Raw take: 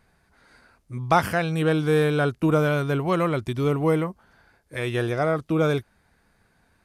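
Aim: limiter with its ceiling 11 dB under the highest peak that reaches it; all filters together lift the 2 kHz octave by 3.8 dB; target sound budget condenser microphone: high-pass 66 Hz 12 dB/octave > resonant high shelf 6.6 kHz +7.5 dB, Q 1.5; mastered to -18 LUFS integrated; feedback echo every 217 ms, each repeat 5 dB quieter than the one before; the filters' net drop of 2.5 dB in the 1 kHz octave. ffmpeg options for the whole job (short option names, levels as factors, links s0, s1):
-af "equalizer=f=1000:t=o:g=-6.5,equalizer=f=2000:t=o:g=8.5,alimiter=limit=0.119:level=0:latency=1,highpass=66,highshelf=f=6600:t=q:w=1.5:g=7.5,aecho=1:1:217|434|651|868|1085|1302|1519:0.562|0.315|0.176|0.0988|0.0553|0.031|0.0173,volume=2.66"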